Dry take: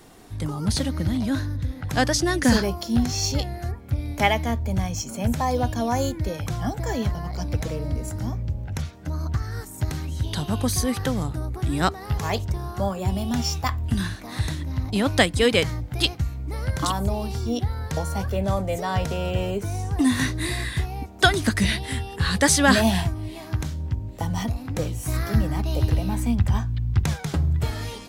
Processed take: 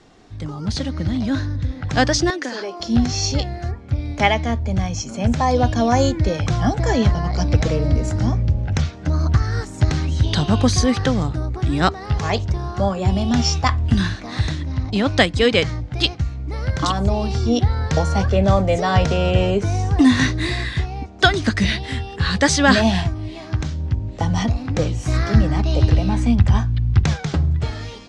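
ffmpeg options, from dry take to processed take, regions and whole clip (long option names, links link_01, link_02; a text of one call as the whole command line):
ffmpeg -i in.wav -filter_complex "[0:a]asettb=1/sr,asplit=3[link_01][link_02][link_03];[link_01]atrim=end=2.304[link_04];[link_02]atrim=start=2.3:end=2.8,asetpts=PTS-STARTPTS,afade=type=in:duration=0.004:curve=qsin,afade=type=out:start_time=0.496:duration=0.004:curve=qsin,highshelf=frequency=8200:gain=-6,acompressor=threshold=-25dB:ratio=4:attack=3.2:release=140:knee=1:detection=peak,highpass=frequency=300:width=0.5412,highpass=frequency=300:width=1.3066[link_05];[link_03]atrim=start=2.796[link_06];[link_04][link_05]acrossfade=duration=0.004:curve1=hsin:curve2=qsin[link_07];[link_07][link_06]acrossfade=duration=0.004:curve1=qsin:curve2=hsin,lowpass=frequency=6500:width=0.5412,lowpass=frequency=6500:width=1.3066,bandreject=frequency=950:width=23,dynaudnorm=framelen=240:gausssize=9:maxgain=11.5dB,volume=-1dB" out.wav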